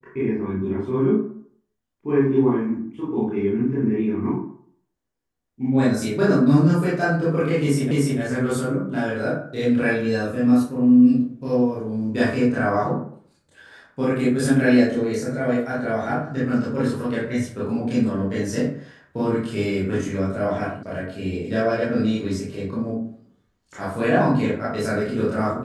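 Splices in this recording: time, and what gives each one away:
7.91 s: repeat of the last 0.29 s
20.83 s: sound stops dead

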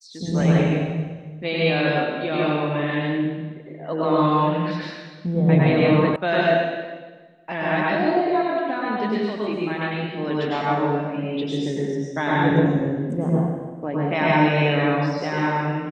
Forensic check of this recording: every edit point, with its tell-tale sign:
6.16 s: sound stops dead

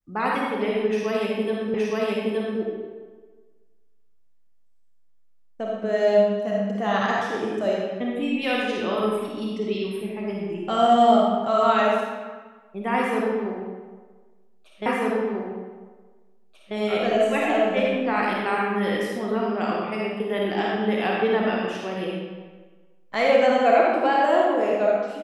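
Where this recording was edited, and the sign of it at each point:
1.74 s: repeat of the last 0.87 s
14.86 s: repeat of the last 1.89 s

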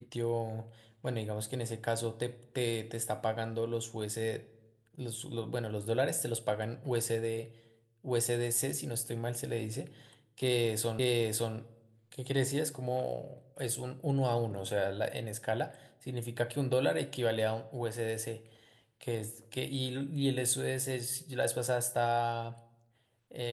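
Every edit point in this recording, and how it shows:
10.99 s: repeat of the last 0.56 s

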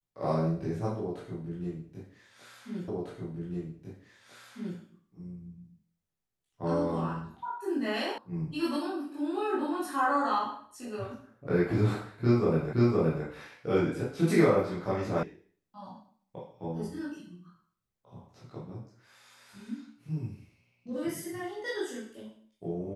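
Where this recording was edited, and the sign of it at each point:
2.88 s: repeat of the last 1.9 s
8.18 s: sound stops dead
12.73 s: repeat of the last 0.52 s
15.23 s: sound stops dead

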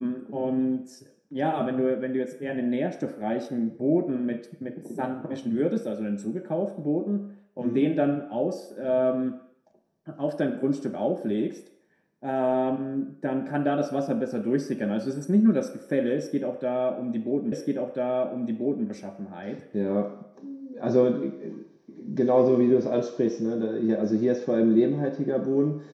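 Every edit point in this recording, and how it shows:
17.52 s: repeat of the last 1.34 s

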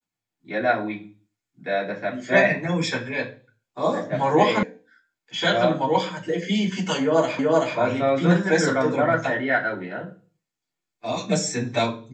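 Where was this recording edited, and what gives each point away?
4.63 s: sound stops dead
7.39 s: repeat of the last 0.38 s

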